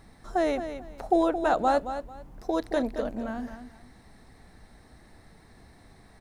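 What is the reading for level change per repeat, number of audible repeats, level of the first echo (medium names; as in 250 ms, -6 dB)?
-12.5 dB, 2, -10.0 dB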